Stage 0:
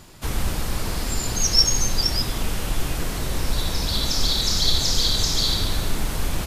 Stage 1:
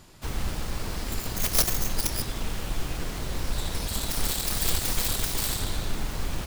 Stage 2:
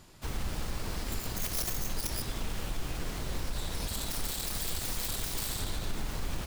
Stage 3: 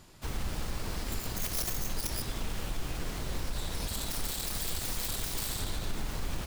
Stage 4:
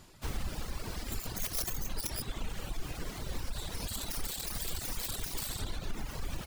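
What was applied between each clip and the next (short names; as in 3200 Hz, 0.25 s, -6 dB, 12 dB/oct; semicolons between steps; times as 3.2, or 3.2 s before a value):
self-modulated delay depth 0.54 ms; gain -5.5 dB
limiter -20.5 dBFS, peak gain reduction 10 dB; gain -3.5 dB
nothing audible
reverb removal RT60 1.5 s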